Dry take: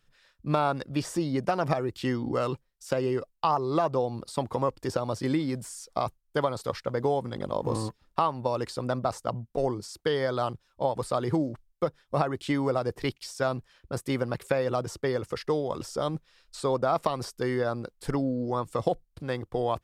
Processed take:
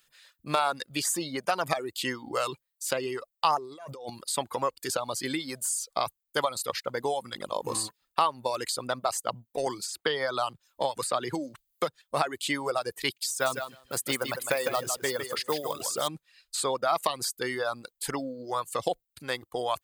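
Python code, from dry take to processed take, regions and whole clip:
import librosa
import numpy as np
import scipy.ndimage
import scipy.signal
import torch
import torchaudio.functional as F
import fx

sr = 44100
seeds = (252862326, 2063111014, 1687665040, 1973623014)

y = fx.chain(x, sr, fx.notch(hz=4100.0, q=15.0),
    fx.over_compress(threshold_db=-36.0, ratio=-1.0), at=(3.57, 4.1))
y = fx.chain(y, sr, fx.high_shelf(hz=7000.0, db=-7.0),
    fx.band_squash(depth_pct=70), at=(9.66, 12.02))
y = fx.chain(y, sr, fx.quant_float(bits=4),
    fx.echo_feedback(ms=156, feedback_pct=23, wet_db=-5.0), at=(13.3, 16.08))
y = fx.notch(y, sr, hz=5500.0, q=6.9)
y = fx.dereverb_blind(y, sr, rt60_s=0.91)
y = fx.tilt_eq(y, sr, slope=4.0)
y = y * 10.0 ** (1.5 / 20.0)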